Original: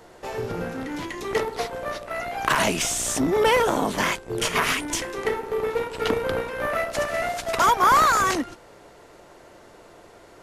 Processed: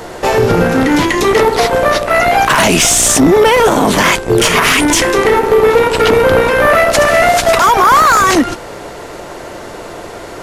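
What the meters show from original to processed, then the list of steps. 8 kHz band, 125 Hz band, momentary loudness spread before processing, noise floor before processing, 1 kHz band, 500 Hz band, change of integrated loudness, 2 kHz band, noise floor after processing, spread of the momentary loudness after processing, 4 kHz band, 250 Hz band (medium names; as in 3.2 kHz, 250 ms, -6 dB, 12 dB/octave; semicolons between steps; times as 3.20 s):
+15.0 dB, +16.0 dB, 12 LU, -50 dBFS, +12.0 dB, +15.5 dB, +14.0 dB, +14.0 dB, -29 dBFS, 20 LU, +14.0 dB, +16.0 dB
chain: in parallel at -5 dB: hard clipper -21.5 dBFS, distortion -8 dB; on the sum: loudness maximiser +18 dB; trim -1 dB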